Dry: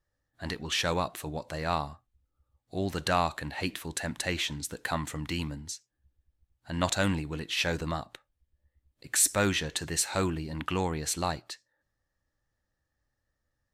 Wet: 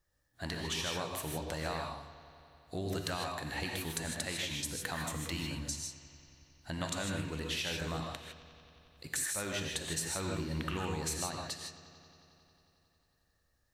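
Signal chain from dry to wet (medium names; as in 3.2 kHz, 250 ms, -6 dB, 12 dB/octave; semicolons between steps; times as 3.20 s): treble shelf 4.5 kHz +7 dB; compression 6:1, threshold -36 dBFS, peak gain reduction 20.5 dB; bucket-brigade echo 90 ms, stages 4096, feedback 83%, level -17 dB; gated-style reverb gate 180 ms rising, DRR 1 dB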